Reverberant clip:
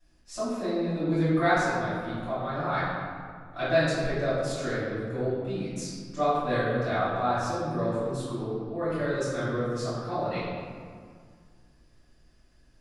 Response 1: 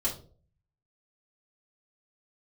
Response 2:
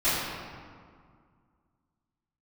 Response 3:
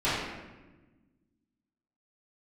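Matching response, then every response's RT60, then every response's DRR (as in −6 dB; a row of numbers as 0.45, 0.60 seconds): 2; 0.45, 2.0, 1.2 seconds; −6.5, −18.0, −14.0 decibels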